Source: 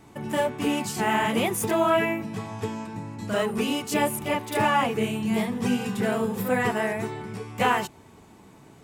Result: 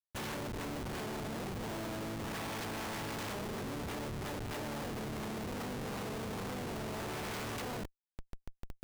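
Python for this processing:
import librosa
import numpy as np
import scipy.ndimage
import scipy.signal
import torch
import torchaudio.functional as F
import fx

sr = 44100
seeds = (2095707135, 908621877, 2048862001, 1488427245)

y = fx.spec_flatten(x, sr, power=0.3)
y = fx.env_lowpass_down(y, sr, base_hz=640.0, full_db=-22.0)
y = fx.schmitt(y, sr, flips_db=-40.0)
y = y * librosa.db_to_amplitude(-6.0)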